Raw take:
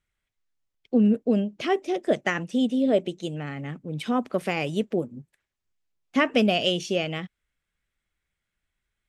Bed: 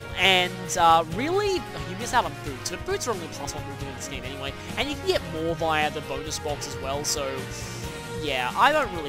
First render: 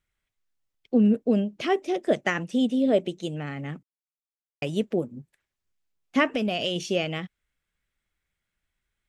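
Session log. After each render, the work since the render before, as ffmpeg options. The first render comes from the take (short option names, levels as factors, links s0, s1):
-filter_complex "[0:a]asettb=1/sr,asplit=3[s0][s1][s2];[s0]atrim=end=6.274[s3];[s1]atrim=start=6.27:end=6.76,asetpts=PTS-STARTPTS,afade=t=in:d=0.004:c=qsin,afade=t=out:st=0.486:d=0.004:c=qsin,acompressor=threshold=0.0794:ratio=5:attack=3.2:release=140:knee=1:detection=peak[s4];[s2]atrim=start=6.756[s5];[s3][s4]acrossfade=d=0.004:c1=hsin:c2=qsin[s6];[s6][s5]acrossfade=d=0.004:c1=qsin:c2=hsin,asplit=3[s7][s8][s9];[s7]atrim=end=3.83,asetpts=PTS-STARTPTS,afade=t=out:st=3.826:d=0.004:c=hsin[s10];[s8]atrim=start=3.83:end=4.62,asetpts=PTS-STARTPTS,volume=0[s11];[s9]atrim=start=4.62,asetpts=PTS-STARTPTS,afade=t=in:d=0.004:c=hsin[s12];[s10][s11][s12]concat=n=3:v=0:a=1"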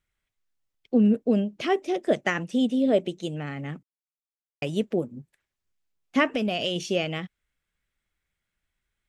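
-af anull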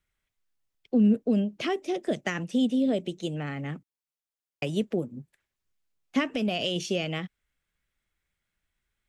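-filter_complex "[0:a]acrossover=split=280|3000[s0][s1][s2];[s1]acompressor=threshold=0.0398:ratio=6[s3];[s0][s3][s2]amix=inputs=3:normalize=0"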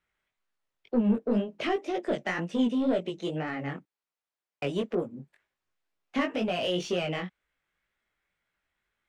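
-filter_complex "[0:a]asplit=2[s0][s1];[s1]highpass=f=720:p=1,volume=7.08,asoftclip=type=tanh:threshold=0.211[s2];[s0][s2]amix=inputs=2:normalize=0,lowpass=f=1300:p=1,volume=0.501,flanger=delay=17:depth=5.4:speed=2"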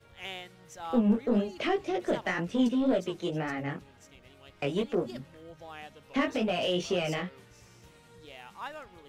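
-filter_complex "[1:a]volume=0.0841[s0];[0:a][s0]amix=inputs=2:normalize=0"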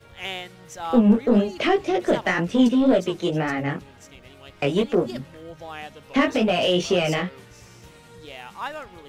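-af "volume=2.66"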